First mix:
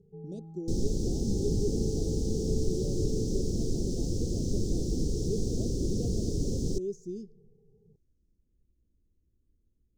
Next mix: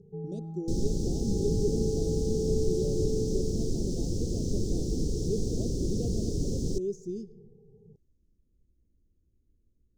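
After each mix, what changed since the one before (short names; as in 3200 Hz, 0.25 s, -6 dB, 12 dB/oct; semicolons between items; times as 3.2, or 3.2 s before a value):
speech: send +11.0 dB; first sound +7.0 dB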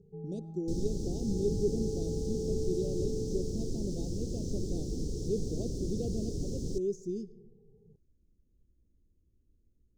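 first sound -5.5 dB; second sound -5.5 dB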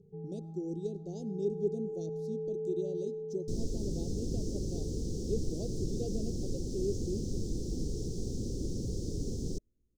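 speech: add low shelf 200 Hz -7.5 dB; second sound: entry +2.80 s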